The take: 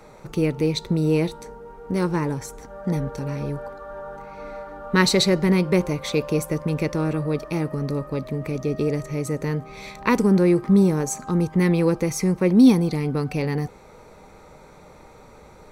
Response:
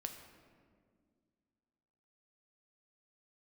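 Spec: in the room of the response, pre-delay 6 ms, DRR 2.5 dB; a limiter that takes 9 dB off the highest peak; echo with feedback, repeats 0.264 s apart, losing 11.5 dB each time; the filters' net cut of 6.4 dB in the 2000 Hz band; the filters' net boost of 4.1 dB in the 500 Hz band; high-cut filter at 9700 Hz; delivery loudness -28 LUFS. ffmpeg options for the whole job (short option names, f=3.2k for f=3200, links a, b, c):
-filter_complex "[0:a]lowpass=9.7k,equalizer=f=500:t=o:g=5.5,equalizer=f=2k:t=o:g=-8,alimiter=limit=-13dB:level=0:latency=1,aecho=1:1:264|528|792:0.266|0.0718|0.0194,asplit=2[a][b];[1:a]atrim=start_sample=2205,adelay=6[c];[b][c]afir=irnorm=-1:irlink=0,volume=-0.5dB[d];[a][d]amix=inputs=2:normalize=0,volume=-8dB"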